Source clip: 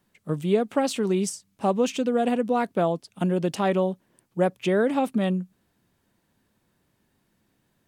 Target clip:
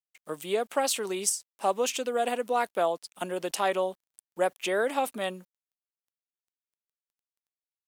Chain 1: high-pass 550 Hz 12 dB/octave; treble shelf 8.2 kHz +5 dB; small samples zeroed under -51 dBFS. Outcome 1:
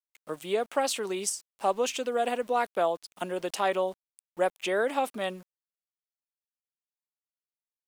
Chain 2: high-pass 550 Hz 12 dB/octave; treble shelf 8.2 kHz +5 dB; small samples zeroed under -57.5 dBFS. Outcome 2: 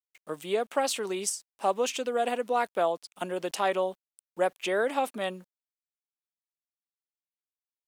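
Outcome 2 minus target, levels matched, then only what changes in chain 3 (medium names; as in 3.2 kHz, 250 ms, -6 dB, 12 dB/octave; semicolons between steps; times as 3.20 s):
8 kHz band -3.0 dB
change: treble shelf 8.2 kHz +13 dB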